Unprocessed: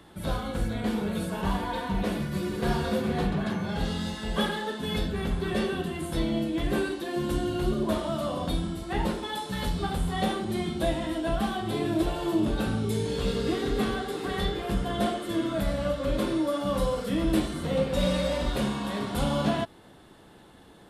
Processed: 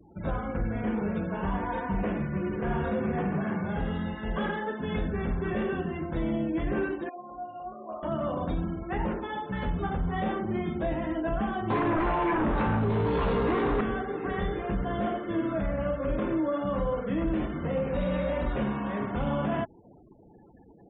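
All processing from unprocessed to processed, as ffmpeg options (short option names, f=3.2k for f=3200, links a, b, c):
-filter_complex "[0:a]asettb=1/sr,asplit=3[a][b][c];[a]atrim=end=3.174[d];[b]atrim=start=3.17:end=3.64,asetpts=PTS-STARTPTS,afade=t=in:d=0.004:c=qsin,afade=t=out:st=0.466:d=0.004:c=qsin,highpass=110,acrossover=split=4800[e][f];[f]acompressor=threshold=-56dB:ratio=4:attack=1:release=60[g];[e][g]amix=inputs=2:normalize=0[h];[c]atrim=start=3.636[i];[d][h]acrossfade=d=0.004:c1=hsin:c2=qsin[j];[j][i]acrossfade=d=0.004:c1=qsin:c2=hsin,asettb=1/sr,asplit=3[k][l][m];[k]atrim=end=7.094[n];[l]atrim=start=7.09:end=8.03,asetpts=PTS-STARTPTS,afade=t=in:d=0.004:c=qsin,afade=t=out:st=0.936:d=0.004:c=qsin,asplit=3[o][p][q];[o]bandpass=f=730:t=q:w=8,volume=0dB[r];[p]bandpass=f=1.09k:t=q:w=8,volume=-6dB[s];[q]bandpass=f=2.44k:t=q:w=8,volume=-9dB[t];[r][s][t]amix=inputs=3:normalize=0,lowshelf=f=73:g=10,asplit=2[u][v];[v]adelay=18,volume=-3dB[w];[u][w]amix=inputs=2:normalize=0,atrim=end_sample=41454[x];[m]atrim=start=8.026[y];[n][x]acrossfade=d=0.004:c1=hsin:c2=qsin[z];[z][y]acrossfade=d=0.004:c1=qsin:c2=hsin,asettb=1/sr,asplit=3[aa][ab][ac];[aa]atrim=end=11.704[ad];[ab]atrim=start=11.7:end=13.81,asetpts=PTS-STARTPTS,afade=t=in:d=0.004:c=qsin,afade=t=out:st=2.106:d=0.004:c=qsin,equalizer=f=1k:t=o:w=0.47:g=13.5,aeval=exprs='0.237*sin(PI/2*3.16*val(0)/0.237)':c=same,asplit=2[ae][af];[af]adelay=17,volume=-9dB[ag];[ae][ag]amix=inputs=2:normalize=0,atrim=end_sample=93051[ah];[ac]atrim=start=13.806[ai];[ad][ah]acrossfade=d=0.004:c1=hsin:c2=qsin[aj];[aj][ai]acrossfade=d=0.004:c1=qsin:c2=hsin,lowpass=f=2.5k:w=0.5412,lowpass=f=2.5k:w=1.3066,afftfilt=real='re*gte(hypot(re,im),0.00562)':imag='im*gte(hypot(re,im),0.00562)':win_size=1024:overlap=0.75,alimiter=limit=-20.5dB:level=0:latency=1:release=25"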